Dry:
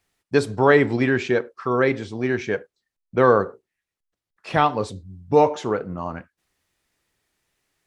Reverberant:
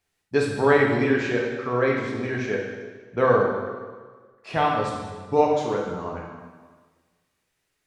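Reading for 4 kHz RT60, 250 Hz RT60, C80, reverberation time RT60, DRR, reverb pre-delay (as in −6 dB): 1.3 s, 1.5 s, 4.0 dB, 1.5 s, −2.5 dB, 5 ms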